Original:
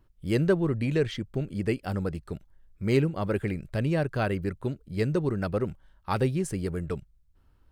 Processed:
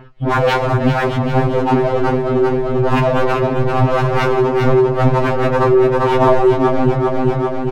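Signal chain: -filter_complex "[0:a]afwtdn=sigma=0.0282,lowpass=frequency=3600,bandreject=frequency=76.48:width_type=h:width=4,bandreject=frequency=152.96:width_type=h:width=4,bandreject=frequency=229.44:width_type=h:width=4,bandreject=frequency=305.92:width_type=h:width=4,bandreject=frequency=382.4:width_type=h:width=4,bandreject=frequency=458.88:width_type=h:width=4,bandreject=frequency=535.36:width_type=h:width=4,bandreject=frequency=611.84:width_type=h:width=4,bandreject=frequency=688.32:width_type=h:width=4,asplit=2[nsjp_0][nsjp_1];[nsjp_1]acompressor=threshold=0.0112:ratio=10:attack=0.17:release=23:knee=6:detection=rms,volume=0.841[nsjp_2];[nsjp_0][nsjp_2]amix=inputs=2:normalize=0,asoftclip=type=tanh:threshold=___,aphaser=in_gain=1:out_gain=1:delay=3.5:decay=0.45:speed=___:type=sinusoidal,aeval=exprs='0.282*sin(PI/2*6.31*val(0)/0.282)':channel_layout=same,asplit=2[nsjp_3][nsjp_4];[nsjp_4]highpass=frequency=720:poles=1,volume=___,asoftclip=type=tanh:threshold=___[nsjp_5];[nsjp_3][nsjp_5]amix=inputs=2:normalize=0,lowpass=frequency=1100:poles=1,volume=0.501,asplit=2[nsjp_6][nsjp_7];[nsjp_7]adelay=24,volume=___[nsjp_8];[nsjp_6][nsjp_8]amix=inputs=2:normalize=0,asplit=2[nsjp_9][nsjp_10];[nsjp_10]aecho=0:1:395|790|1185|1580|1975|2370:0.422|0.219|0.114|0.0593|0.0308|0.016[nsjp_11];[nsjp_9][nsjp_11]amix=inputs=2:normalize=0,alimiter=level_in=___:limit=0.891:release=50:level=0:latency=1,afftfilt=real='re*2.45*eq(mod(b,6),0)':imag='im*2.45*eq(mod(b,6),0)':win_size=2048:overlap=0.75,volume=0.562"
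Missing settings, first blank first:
0.168, 1.9, 17.8, 0.299, 0.224, 5.01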